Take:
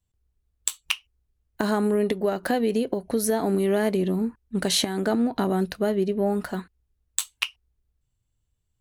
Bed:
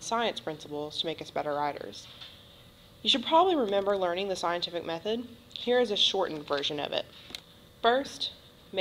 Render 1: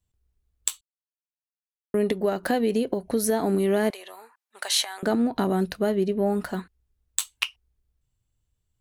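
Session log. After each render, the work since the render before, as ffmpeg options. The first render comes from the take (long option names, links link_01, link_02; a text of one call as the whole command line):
ffmpeg -i in.wav -filter_complex "[0:a]asettb=1/sr,asplit=3[link_01][link_02][link_03];[link_01]atrim=end=3.904[link_04];[link_02]atrim=start=3.9:end=5.03,asetpts=PTS-STARTPTS,afade=type=in:duration=0.004:curve=qsin,afade=type=out:start_time=1.126:duration=0.004:curve=qsin,highpass=frequency=730:width=0.5412,highpass=frequency=730:width=1.3066[link_05];[link_03]atrim=start=5.026[link_06];[link_04][link_05]acrossfade=duration=0.004:curve1=hsin:curve2=qsin[link_07];[link_07][link_06]acrossfade=duration=0.004:curve1=qsin:curve2=hsin,asplit=3[link_08][link_09][link_10];[link_08]atrim=end=0.81,asetpts=PTS-STARTPTS,afade=type=out:start_time=0.806:duration=0.004:curve=hsin[link_11];[link_09]atrim=start=0.81:end=1.94,asetpts=PTS-STARTPTS,volume=0[link_12];[link_10]atrim=start=1.94,asetpts=PTS-STARTPTS,afade=type=in:duration=0.004:curve=hsin[link_13];[link_11][link_12][link_13]concat=n=3:v=0:a=1" out.wav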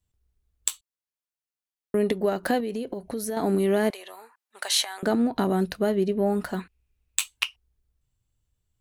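ffmpeg -i in.wav -filter_complex "[0:a]asettb=1/sr,asplit=3[link_01][link_02][link_03];[link_01]atrim=end=2.604[link_04];[link_02]atrim=start=2.6:end=3.37,asetpts=PTS-STARTPTS,afade=type=in:duration=0.004:curve=qsin,afade=type=out:start_time=0.766:duration=0.004:curve=qsin,acompressor=threshold=-32dB:ratio=2:attack=3.2:release=140:knee=1:detection=peak[link_05];[link_03]atrim=start=3.366[link_06];[link_04][link_05]acrossfade=duration=0.004:curve1=hsin:curve2=qsin[link_07];[link_07][link_06]acrossfade=duration=0.004:curve1=qsin:curve2=hsin,asettb=1/sr,asplit=3[link_08][link_09][link_10];[link_08]atrim=end=6.604[link_11];[link_09]atrim=start=6.6:end=7.28,asetpts=PTS-STARTPTS,afade=type=in:duration=0.004:curve=qsin,afade=type=out:start_time=0.676:duration=0.004:curve=qsin,equalizer=frequency=2500:width_type=o:width=0.39:gain=13.5[link_12];[link_10]atrim=start=7.276[link_13];[link_11][link_12]acrossfade=duration=0.004:curve1=hsin:curve2=qsin[link_14];[link_14][link_13]acrossfade=duration=0.004:curve1=qsin:curve2=hsin" out.wav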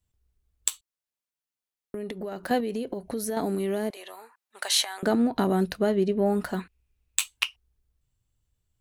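ffmpeg -i in.wav -filter_complex "[0:a]asettb=1/sr,asplit=3[link_01][link_02][link_03];[link_01]atrim=end=0.694[link_04];[link_02]atrim=start=0.69:end=2.51,asetpts=PTS-STARTPTS,afade=type=in:duration=0.004:curve=qsin,afade=type=out:start_time=1.816:duration=0.004:curve=qsin,acompressor=threshold=-31dB:ratio=6:attack=3.2:release=140:knee=1:detection=peak[link_05];[link_03]atrim=start=2.506[link_06];[link_04][link_05]acrossfade=duration=0.004:curve1=hsin:curve2=qsin[link_07];[link_07][link_06]acrossfade=duration=0.004:curve1=qsin:curve2=hsin,asettb=1/sr,asplit=3[link_08][link_09][link_10];[link_08]atrim=end=3.404[link_11];[link_09]atrim=start=3.4:end=3.97,asetpts=PTS-STARTPTS,afade=type=in:duration=0.004:curve=qsin,afade=type=out:start_time=0.566:duration=0.004:curve=qsin,acrossover=split=840|3800[link_12][link_13][link_14];[link_12]acompressor=threshold=-26dB:ratio=4[link_15];[link_13]acompressor=threshold=-43dB:ratio=4[link_16];[link_14]acompressor=threshold=-47dB:ratio=4[link_17];[link_15][link_16][link_17]amix=inputs=3:normalize=0[link_18];[link_10]atrim=start=3.966[link_19];[link_11][link_18]acrossfade=duration=0.004:curve1=hsin:curve2=qsin[link_20];[link_20][link_19]acrossfade=duration=0.004:curve1=qsin:curve2=hsin,asettb=1/sr,asplit=3[link_21][link_22][link_23];[link_21]atrim=end=5.784[link_24];[link_22]atrim=start=5.78:end=6.26,asetpts=PTS-STARTPTS,afade=type=in:duration=0.004:curve=qsin,afade=type=out:start_time=0.476:duration=0.004:curve=qsin,lowpass=9900[link_25];[link_23]atrim=start=6.256[link_26];[link_24][link_25]acrossfade=duration=0.004:curve1=hsin:curve2=qsin[link_27];[link_27][link_26]acrossfade=duration=0.004:curve1=qsin:curve2=hsin" out.wav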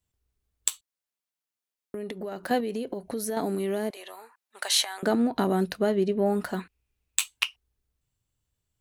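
ffmpeg -i in.wav -af "lowshelf=frequency=85:gain=-9.5" out.wav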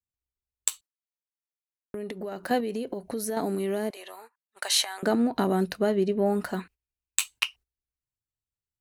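ffmpeg -i in.wav -af "bandreject=frequency=3400:width=15,agate=range=-17dB:threshold=-48dB:ratio=16:detection=peak" out.wav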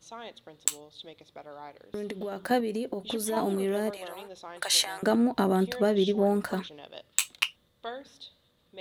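ffmpeg -i in.wav -i bed.wav -filter_complex "[1:a]volume=-14dB[link_01];[0:a][link_01]amix=inputs=2:normalize=0" out.wav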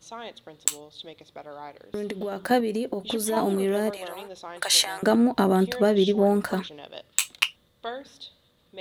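ffmpeg -i in.wav -af "volume=4dB,alimiter=limit=-3dB:level=0:latency=1" out.wav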